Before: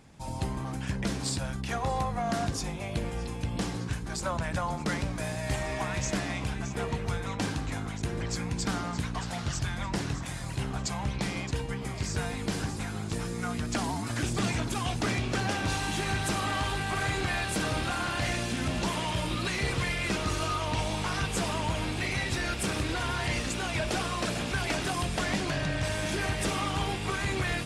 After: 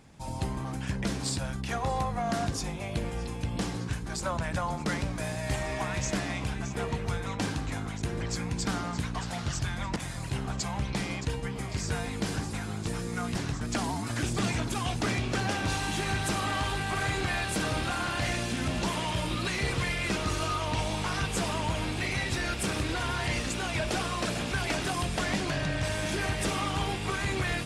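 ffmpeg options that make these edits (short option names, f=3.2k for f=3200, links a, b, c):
-filter_complex "[0:a]asplit=4[a][b][c][d];[a]atrim=end=9.962[e];[b]atrim=start=10.218:end=13.612[f];[c]atrim=start=9.958:end=10.222[g];[d]atrim=start=13.608[h];[e][f]acrossfade=d=0.004:c1=hsin:c2=hsin[i];[i][g]acrossfade=d=0.004:c1=hsin:c2=hsin[j];[j][h]acrossfade=d=0.004:c1=hsin:c2=hsin"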